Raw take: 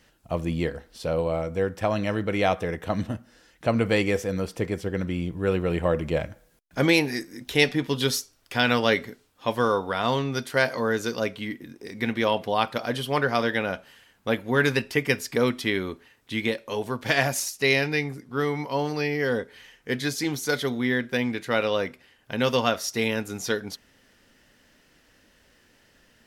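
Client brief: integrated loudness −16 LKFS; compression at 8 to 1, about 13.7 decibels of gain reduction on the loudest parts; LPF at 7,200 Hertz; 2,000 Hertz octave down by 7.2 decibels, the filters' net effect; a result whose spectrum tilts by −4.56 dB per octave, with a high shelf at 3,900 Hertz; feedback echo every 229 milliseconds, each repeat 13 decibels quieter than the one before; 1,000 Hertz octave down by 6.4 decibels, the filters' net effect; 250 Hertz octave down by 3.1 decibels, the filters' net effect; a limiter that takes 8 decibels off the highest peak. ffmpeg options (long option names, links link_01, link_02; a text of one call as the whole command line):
ffmpeg -i in.wav -af "lowpass=7200,equalizer=frequency=250:width_type=o:gain=-3.5,equalizer=frequency=1000:width_type=o:gain=-7,equalizer=frequency=2000:width_type=o:gain=-8,highshelf=frequency=3900:gain=4,acompressor=threshold=-34dB:ratio=8,alimiter=level_in=4dB:limit=-24dB:level=0:latency=1,volume=-4dB,aecho=1:1:229|458|687:0.224|0.0493|0.0108,volume=23.5dB" out.wav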